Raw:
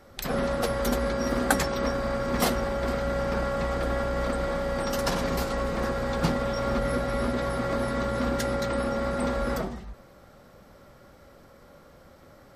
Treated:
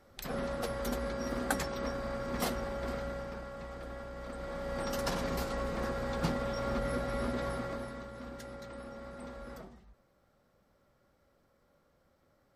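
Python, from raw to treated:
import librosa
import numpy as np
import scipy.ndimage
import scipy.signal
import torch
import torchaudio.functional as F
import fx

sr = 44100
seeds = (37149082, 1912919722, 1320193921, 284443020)

y = fx.gain(x, sr, db=fx.line((2.99, -9.0), (3.42, -16.0), (4.22, -16.0), (4.82, -7.0), (7.51, -7.0), (8.1, -18.0)))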